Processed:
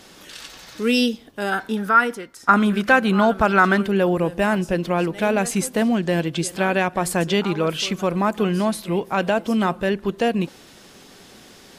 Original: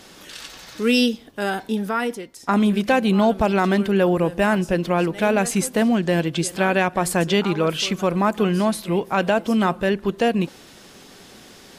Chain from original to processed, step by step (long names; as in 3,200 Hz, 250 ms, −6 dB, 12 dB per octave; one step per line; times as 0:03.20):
0:01.52–0:03.82: parametric band 1,400 Hz +13 dB 0.68 octaves
level −1 dB